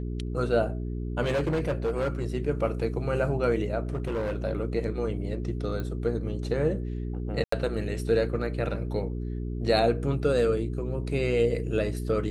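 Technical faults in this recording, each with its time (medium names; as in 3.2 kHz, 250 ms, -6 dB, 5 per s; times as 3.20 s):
hum 60 Hz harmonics 7 -32 dBFS
1.22–2.24 s: clipped -22.5 dBFS
3.83–4.37 s: clipped -25.5 dBFS
5.80 s: pop -22 dBFS
7.44–7.52 s: dropout 84 ms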